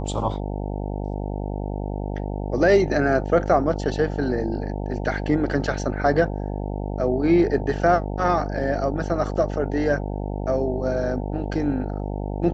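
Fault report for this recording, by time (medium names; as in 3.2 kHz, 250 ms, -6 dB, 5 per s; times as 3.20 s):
buzz 50 Hz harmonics 18 -28 dBFS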